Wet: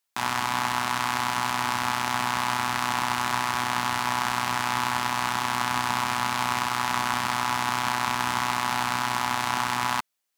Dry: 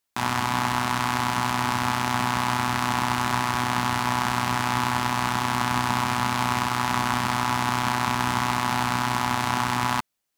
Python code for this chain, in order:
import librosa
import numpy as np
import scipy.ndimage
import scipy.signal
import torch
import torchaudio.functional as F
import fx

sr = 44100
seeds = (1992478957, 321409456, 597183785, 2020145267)

y = fx.low_shelf(x, sr, hz=410.0, db=-9.5)